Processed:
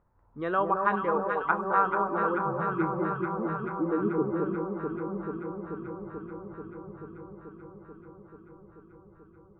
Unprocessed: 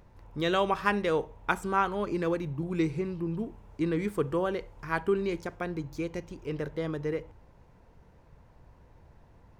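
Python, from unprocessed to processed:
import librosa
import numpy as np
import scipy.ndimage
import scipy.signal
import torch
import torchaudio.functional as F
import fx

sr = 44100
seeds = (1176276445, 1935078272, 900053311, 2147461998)

p1 = fx.noise_reduce_blind(x, sr, reduce_db=11)
p2 = fx.filter_sweep_lowpass(p1, sr, from_hz=1300.0, to_hz=100.0, start_s=3.07, end_s=5.32, q=2.3)
p3 = p2 + fx.echo_alternate(p2, sr, ms=218, hz=1100.0, feedback_pct=88, wet_db=-3.5, dry=0)
y = p3 * 10.0 ** (-3.5 / 20.0)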